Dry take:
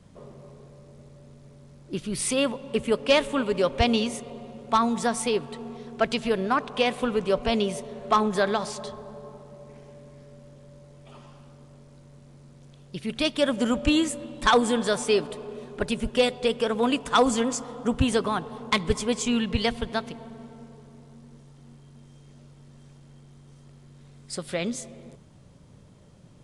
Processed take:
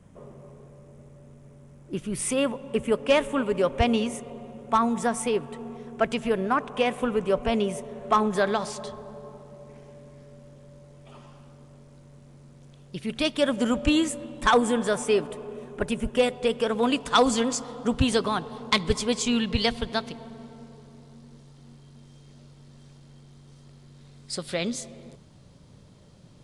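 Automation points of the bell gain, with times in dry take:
bell 4300 Hz 0.72 oct
7.88 s -11 dB
8.56 s -2 dB
14.08 s -2 dB
14.76 s -9 dB
16.31 s -9 dB
16.69 s -1.5 dB
17.21 s +5.5 dB

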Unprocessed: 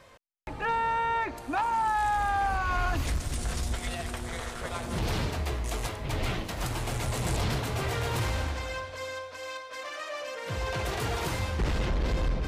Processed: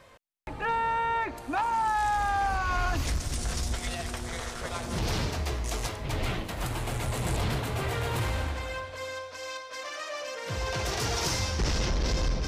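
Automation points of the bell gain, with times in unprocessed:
bell 5600 Hz 0.75 oct
1.31 s -1.5 dB
2.02 s +5.5 dB
5.83 s +5.5 dB
6.47 s -3.5 dB
8.81 s -3.5 dB
9.39 s +6 dB
10.62 s +6 dB
11.25 s +15 dB

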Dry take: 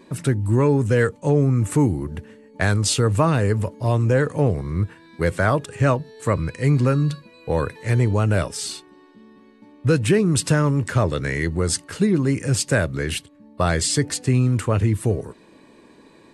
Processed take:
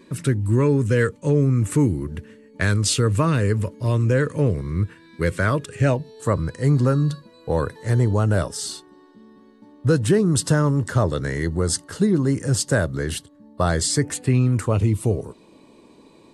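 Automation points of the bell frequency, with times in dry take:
bell -14 dB 0.41 oct
5.68 s 760 Hz
6.29 s 2400 Hz
13.87 s 2400 Hz
14.42 s 9300 Hz
14.71 s 1700 Hz

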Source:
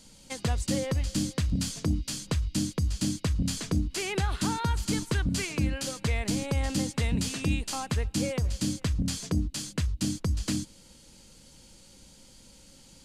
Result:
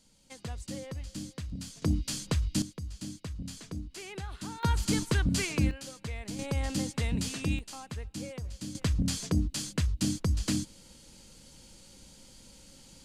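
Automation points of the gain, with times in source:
-11 dB
from 1.82 s -0.5 dB
from 2.62 s -11.5 dB
from 4.63 s +0.5 dB
from 5.71 s -10 dB
from 6.39 s -3 dB
from 7.59 s -10.5 dB
from 8.75 s 0 dB

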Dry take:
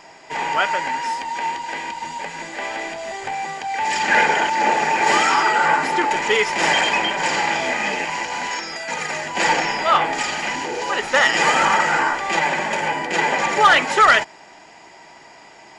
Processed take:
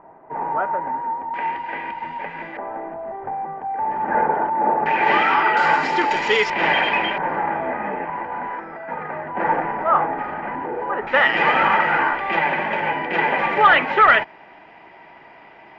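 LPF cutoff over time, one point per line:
LPF 24 dB/oct
1200 Hz
from 1.34 s 2400 Hz
from 2.57 s 1200 Hz
from 4.86 s 2900 Hz
from 5.57 s 5300 Hz
from 6.5 s 3000 Hz
from 7.18 s 1500 Hz
from 11.07 s 2800 Hz

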